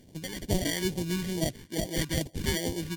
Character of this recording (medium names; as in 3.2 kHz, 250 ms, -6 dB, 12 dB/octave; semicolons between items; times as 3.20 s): aliases and images of a low sample rate 1.3 kHz, jitter 0%; phasing stages 2, 2.3 Hz, lowest notch 650–1300 Hz; MP3